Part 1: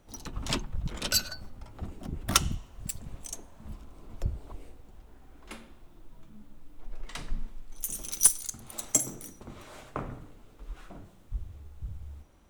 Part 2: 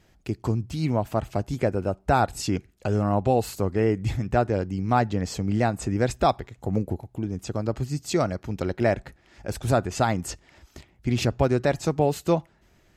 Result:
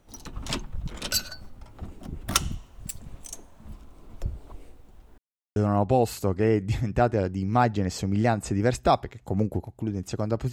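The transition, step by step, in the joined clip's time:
part 1
5.18–5.56 s: mute
5.56 s: go over to part 2 from 2.92 s

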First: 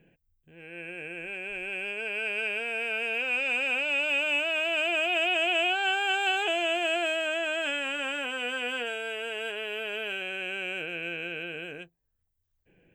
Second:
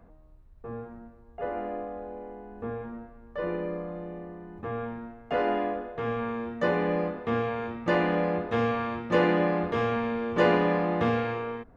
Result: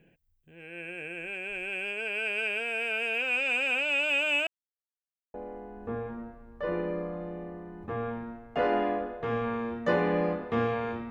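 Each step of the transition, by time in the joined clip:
first
4.47–5.34 s: mute
5.34 s: go over to second from 2.09 s

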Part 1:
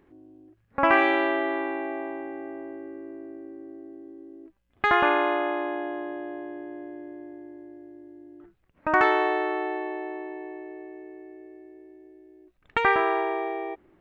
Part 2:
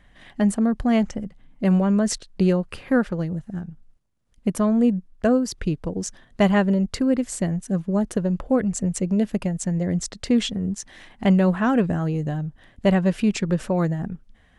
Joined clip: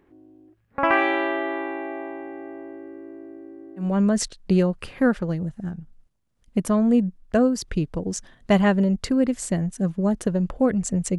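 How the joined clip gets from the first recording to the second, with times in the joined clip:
part 1
3.87 s: go over to part 2 from 1.77 s, crossfade 0.22 s

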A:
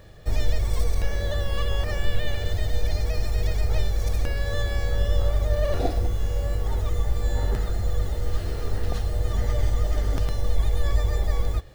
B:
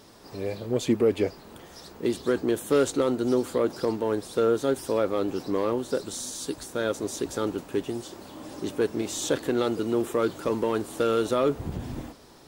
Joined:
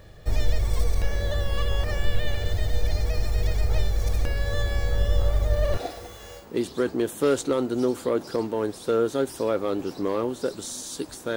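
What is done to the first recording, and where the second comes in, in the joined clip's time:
A
5.77–6.48 s: high-pass 810 Hz 6 dB/octave
6.41 s: go over to B from 1.90 s, crossfade 0.14 s

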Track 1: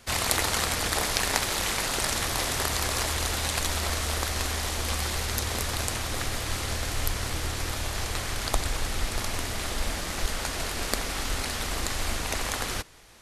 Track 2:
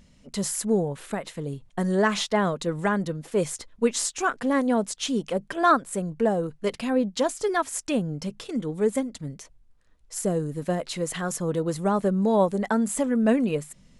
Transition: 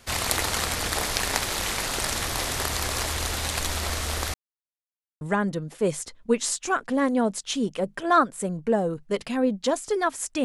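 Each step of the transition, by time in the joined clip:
track 1
4.34–5.21 s: mute
5.21 s: go over to track 2 from 2.74 s

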